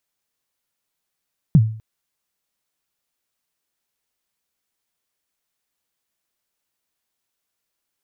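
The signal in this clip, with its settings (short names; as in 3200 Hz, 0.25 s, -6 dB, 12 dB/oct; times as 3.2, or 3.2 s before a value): kick drum length 0.25 s, from 180 Hz, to 110 Hz, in 49 ms, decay 0.47 s, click off, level -5 dB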